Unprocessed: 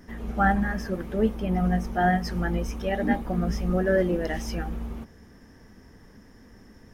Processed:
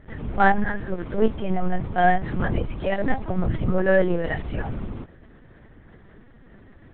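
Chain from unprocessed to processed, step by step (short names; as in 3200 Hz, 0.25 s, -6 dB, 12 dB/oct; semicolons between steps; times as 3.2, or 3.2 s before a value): added harmonics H 3 -25 dB, 7 -32 dB, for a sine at -9 dBFS; LPC vocoder at 8 kHz pitch kept; gain +6 dB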